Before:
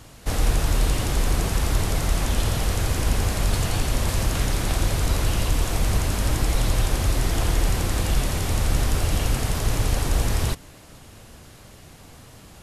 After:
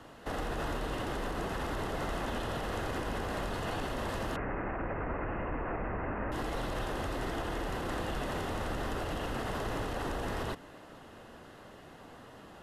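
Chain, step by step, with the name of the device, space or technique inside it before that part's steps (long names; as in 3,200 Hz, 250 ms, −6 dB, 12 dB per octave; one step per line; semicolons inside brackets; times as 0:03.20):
DJ mixer with the lows and highs turned down (three-way crossover with the lows and the highs turned down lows −14 dB, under 210 Hz, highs −17 dB, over 2,900 Hz; brickwall limiter −26.5 dBFS, peak gain reduction 9 dB)
notch filter 2,300 Hz, Q 5.6
0:04.36–0:06.32: Butterworth low-pass 2,500 Hz 72 dB per octave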